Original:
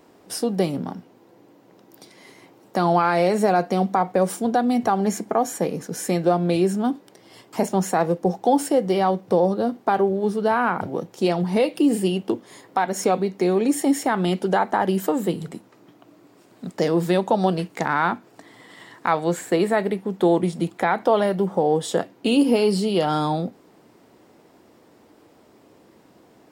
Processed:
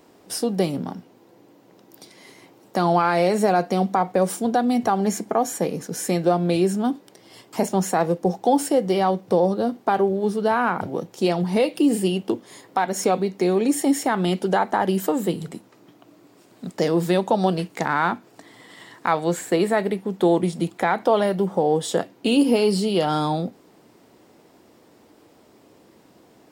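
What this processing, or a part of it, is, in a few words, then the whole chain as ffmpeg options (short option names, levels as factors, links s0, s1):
exciter from parts: -filter_complex "[0:a]asplit=2[s0][s1];[s1]highpass=2100,asoftclip=type=tanh:threshold=0.0266,volume=0.355[s2];[s0][s2]amix=inputs=2:normalize=0"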